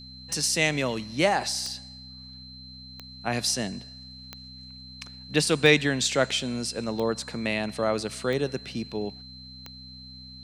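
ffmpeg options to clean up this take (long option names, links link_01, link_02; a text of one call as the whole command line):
ffmpeg -i in.wav -af "adeclick=threshold=4,bandreject=frequency=63.6:width_type=h:width=4,bandreject=frequency=127.2:width_type=h:width=4,bandreject=frequency=190.8:width_type=h:width=4,bandreject=frequency=254.4:width_type=h:width=4,bandreject=frequency=4100:width=30" out.wav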